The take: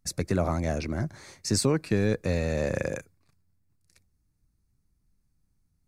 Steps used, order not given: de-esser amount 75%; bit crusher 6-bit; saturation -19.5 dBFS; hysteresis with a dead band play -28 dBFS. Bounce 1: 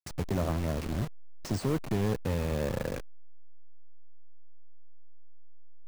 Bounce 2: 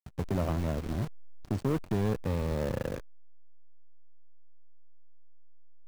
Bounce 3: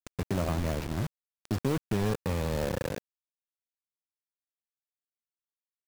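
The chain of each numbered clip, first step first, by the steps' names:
saturation > bit crusher > hysteresis with a dead band > de-esser; bit crusher > de-esser > saturation > hysteresis with a dead band; de-esser > saturation > hysteresis with a dead band > bit crusher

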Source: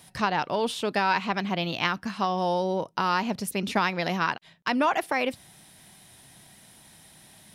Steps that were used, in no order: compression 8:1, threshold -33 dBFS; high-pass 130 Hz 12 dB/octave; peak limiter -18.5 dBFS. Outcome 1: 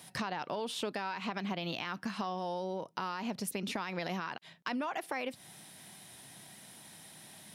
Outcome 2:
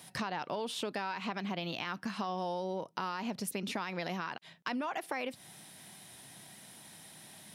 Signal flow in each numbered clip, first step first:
high-pass > peak limiter > compression; peak limiter > compression > high-pass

